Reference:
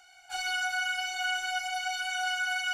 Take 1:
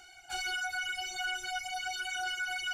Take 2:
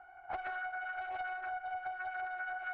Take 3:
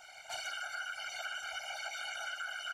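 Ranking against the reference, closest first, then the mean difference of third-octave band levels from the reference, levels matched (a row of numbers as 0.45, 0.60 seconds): 1, 3, 2; 4.0, 7.5, 13.0 decibels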